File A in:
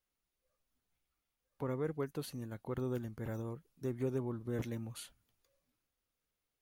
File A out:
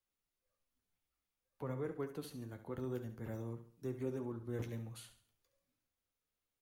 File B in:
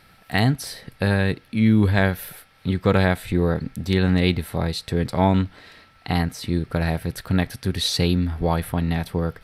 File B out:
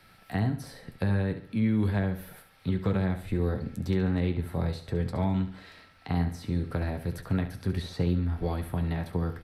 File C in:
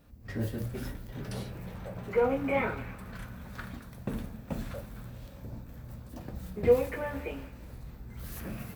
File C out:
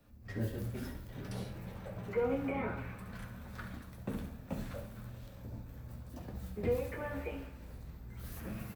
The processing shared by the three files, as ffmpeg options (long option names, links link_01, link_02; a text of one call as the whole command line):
ffmpeg -i in.wav -filter_complex "[0:a]acrossover=split=140|370|1700[link_01][link_02][link_03][link_04];[link_01]acompressor=threshold=-25dB:ratio=4[link_05];[link_02]acompressor=threshold=-27dB:ratio=4[link_06];[link_03]acompressor=threshold=-32dB:ratio=4[link_07];[link_04]acompressor=threshold=-46dB:ratio=4[link_08];[link_05][link_06][link_07][link_08]amix=inputs=4:normalize=0,flanger=delay=9:depth=2.8:regen=-50:speed=0.58:shape=triangular,asplit=2[link_09][link_10];[link_10]aecho=0:1:69|138|207|276:0.282|0.11|0.0429|0.0167[link_11];[link_09][link_11]amix=inputs=2:normalize=0" out.wav